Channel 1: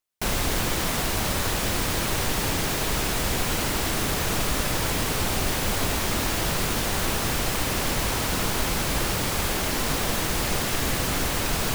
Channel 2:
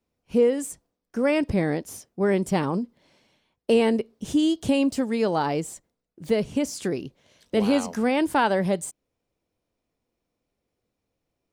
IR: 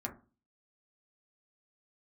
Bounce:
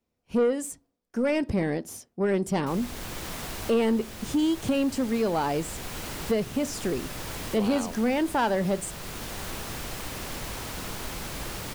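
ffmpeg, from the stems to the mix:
-filter_complex "[0:a]adelay=2450,volume=-10dB[link_01];[1:a]volume=-2dB,asplit=3[link_02][link_03][link_04];[link_03]volume=-15.5dB[link_05];[link_04]apad=whole_len=626165[link_06];[link_01][link_06]sidechaincompress=threshold=-25dB:ratio=8:attack=10:release=997[link_07];[2:a]atrim=start_sample=2205[link_08];[link_05][link_08]afir=irnorm=-1:irlink=0[link_09];[link_07][link_02][link_09]amix=inputs=3:normalize=0,asoftclip=type=tanh:threshold=-17dB"

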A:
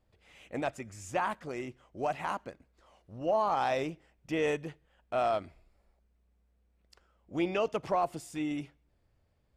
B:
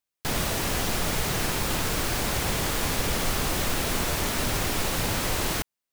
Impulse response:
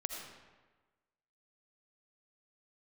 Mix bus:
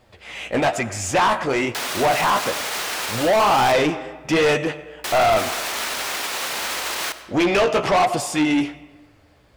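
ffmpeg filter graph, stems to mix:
-filter_complex "[0:a]lowshelf=frequency=140:gain=11,flanger=delay=8.1:depth=9.5:regen=37:speed=1.1:shape=sinusoidal,volume=3dB,asplit=2[link_01][link_02];[link_02]volume=-14.5dB[link_03];[1:a]alimiter=limit=-22.5dB:level=0:latency=1,highpass=frequency=530:poles=1,adelay=1500,volume=-15dB,asplit=3[link_04][link_05][link_06];[link_04]atrim=end=3.72,asetpts=PTS-STARTPTS,afade=type=out:start_time=3.716:duration=0.004:curve=hsin[link_07];[link_05]atrim=start=3.72:end=5.04,asetpts=PTS-STARTPTS,volume=0[link_08];[link_06]atrim=start=5.04,asetpts=PTS-STARTPTS,afade=type=in:duration=0.004:curve=hsin[link_09];[link_07][link_08][link_09]concat=n=3:v=0:a=1,asplit=2[link_10][link_11];[link_11]volume=-7.5dB[link_12];[2:a]atrim=start_sample=2205[link_13];[link_03][link_12]amix=inputs=2:normalize=0[link_14];[link_14][link_13]afir=irnorm=-1:irlink=0[link_15];[link_01][link_10][link_15]amix=inputs=3:normalize=0,asplit=2[link_16][link_17];[link_17]highpass=frequency=720:poles=1,volume=30dB,asoftclip=type=tanh:threshold=-9dB[link_18];[link_16][link_18]amix=inputs=2:normalize=0,lowpass=frequency=5900:poles=1,volume=-6dB"

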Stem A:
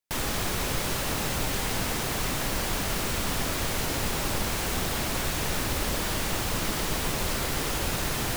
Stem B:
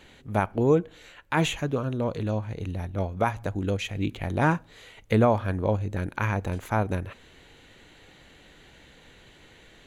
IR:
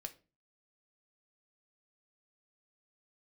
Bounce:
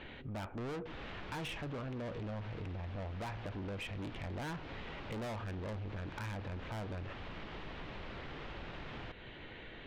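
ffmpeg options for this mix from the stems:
-filter_complex "[0:a]adelay=750,volume=-10dB[link_01];[1:a]volume=1dB,asplit=2[link_02][link_03];[link_03]volume=-3.5dB[link_04];[2:a]atrim=start_sample=2205[link_05];[link_04][link_05]afir=irnorm=-1:irlink=0[link_06];[link_01][link_02][link_06]amix=inputs=3:normalize=0,lowpass=frequency=3300:width=0.5412,lowpass=frequency=3300:width=1.3066,asoftclip=type=tanh:threshold=-29dB,acompressor=threshold=-44dB:ratio=3"

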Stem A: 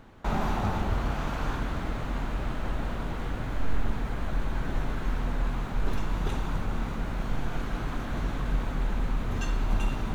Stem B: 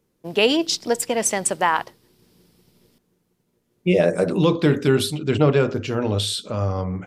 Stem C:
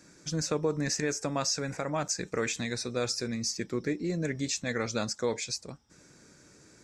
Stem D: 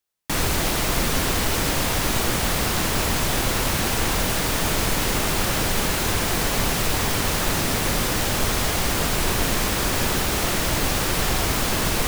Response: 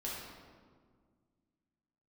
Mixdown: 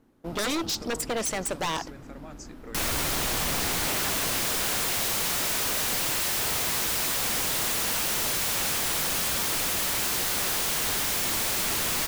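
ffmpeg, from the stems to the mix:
-filter_complex "[0:a]equalizer=frequency=290:width=1.5:gain=13.5,volume=-17dB[link_01];[1:a]acontrast=26,volume=-8.5dB[link_02];[2:a]adelay=300,volume=-14.5dB[link_03];[3:a]dynaudnorm=framelen=260:gausssize=17:maxgain=11.5dB,acompressor=threshold=-16dB:ratio=2.5,adelay=2450,volume=0.5dB[link_04];[link_01][link_02][link_03][link_04]amix=inputs=4:normalize=0,aeval=exprs='0.075*(abs(mod(val(0)/0.075+3,4)-2)-1)':channel_layout=same"

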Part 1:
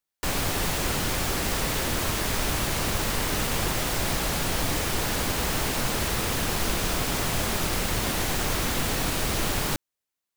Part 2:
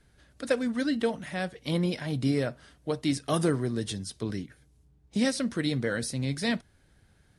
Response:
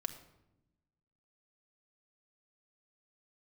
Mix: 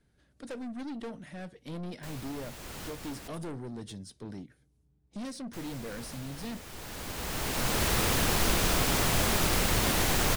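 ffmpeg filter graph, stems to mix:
-filter_complex "[0:a]adelay=1800,volume=0dB,asplit=3[link_01][link_02][link_03];[link_01]atrim=end=3.28,asetpts=PTS-STARTPTS,afade=type=out:start_time=3.276:duration=0.004:curve=hsin[link_04];[link_02]atrim=start=3.28:end=5.53,asetpts=PTS-STARTPTS,volume=0[link_05];[link_03]atrim=start=5.53,asetpts=PTS-STARTPTS,afade=type=in:duration=0.004:curve=hsin[link_06];[link_04][link_05][link_06]concat=n=3:v=0:a=1[link_07];[1:a]equalizer=frequency=240:width=0.55:gain=5.5,aeval=exprs='(tanh(20*val(0)+0.2)-tanh(0.2))/20':channel_layout=same,volume=-9.5dB,asplit=2[link_08][link_09];[link_09]apad=whole_len=536579[link_10];[link_07][link_10]sidechaincompress=threshold=-59dB:ratio=6:attack=36:release=897[link_11];[link_11][link_08]amix=inputs=2:normalize=0"

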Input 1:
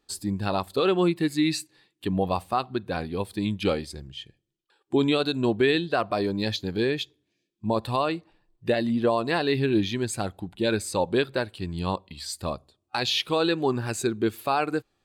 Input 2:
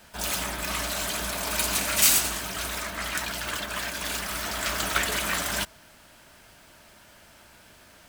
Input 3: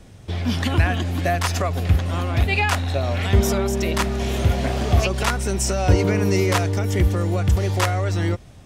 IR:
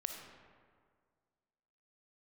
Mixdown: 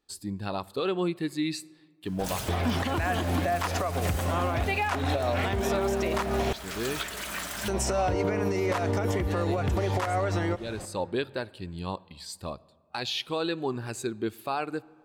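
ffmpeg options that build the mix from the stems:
-filter_complex "[0:a]volume=-7dB,asplit=2[link_01][link_02];[link_02]volume=-16.5dB[link_03];[1:a]alimiter=limit=-15.5dB:level=0:latency=1:release=396,adelay=2050,volume=-8.5dB,asplit=2[link_04][link_05];[link_05]volume=-7dB[link_06];[2:a]equalizer=frequency=810:width_type=o:width=2.9:gain=11,acompressor=threshold=-16dB:ratio=6,adelay=2200,volume=1.5dB,asplit=3[link_07][link_08][link_09];[link_07]atrim=end=6.53,asetpts=PTS-STARTPTS,afade=type=out:start_time=6.526:duration=0.004:curve=hsin[link_10];[link_08]atrim=start=6.53:end=7.68,asetpts=PTS-STARTPTS,volume=0[link_11];[link_09]atrim=start=7.68,asetpts=PTS-STARTPTS,afade=type=in:duration=0.004:curve=hsin[link_12];[link_10][link_11][link_12]concat=n=3:v=0:a=1,asplit=2[link_13][link_14];[link_14]volume=-15dB[link_15];[3:a]atrim=start_sample=2205[link_16];[link_03][link_06][link_15]amix=inputs=3:normalize=0[link_17];[link_17][link_16]afir=irnorm=-1:irlink=0[link_18];[link_01][link_04][link_13][link_18]amix=inputs=4:normalize=0,alimiter=limit=-18dB:level=0:latency=1:release=478"

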